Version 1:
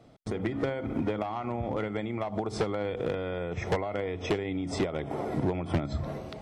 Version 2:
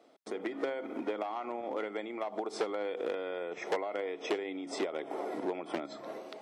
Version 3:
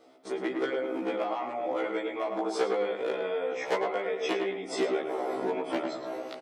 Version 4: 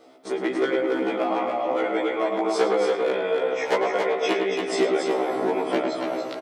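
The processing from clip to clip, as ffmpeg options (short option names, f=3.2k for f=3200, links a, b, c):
-af "highpass=f=300:w=0.5412,highpass=f=300:w=1.3066,volume=-3dB"
-filter_complex "[0:a]asplit=2[a][b];[b]adelay=107,lowpass=f=2.1k:p=1,volume=-4dB,asplit=2[c][d];[d]adelay=107,lowpass=f=2.1k:p=1,volume=0.32,asplit=2[e][f];[f]adelay=107,lowpass=f=2.1k:p=1,volume=0.32,asplit=2[g][h];[h]adelay=107,lowpass=f=2.1k:p=1,volume=0.32[i];[a][c][e][g][i]amix=inputs=5:normalize=0,afftfilt=real='re*1.73*eq(mod(b,3),0)':imag='im*1.73*eq(mod(b,3),0)':win_size=2048:overlap=0.75,volume=7dB"
-af "aecho=1:1:281:0.562,volume=6dB"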